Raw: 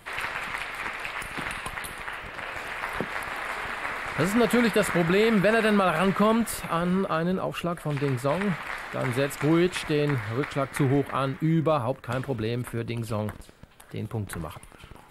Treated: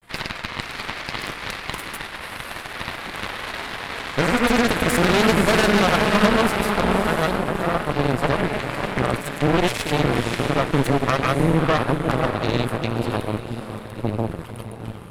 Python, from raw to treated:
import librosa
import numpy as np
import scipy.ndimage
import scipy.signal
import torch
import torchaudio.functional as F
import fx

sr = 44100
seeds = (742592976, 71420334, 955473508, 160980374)

y = fx.granulator(x, sr, seeds[0], grain_ms=100.0, per_s=20.0, spray_ms=100.0, spread_st=0)
y = fx.echo_diffused(y, sr, ms=564, feedback_pct=49, wet_db=-4.0)
y = fx.cheby_harmonics(y, sr, harmonics=(3, 6), levels_db=(-16, -12), full_scale_db=-10.5)
y = F.gain(torch.from_numpy(y), 5.0).numpy()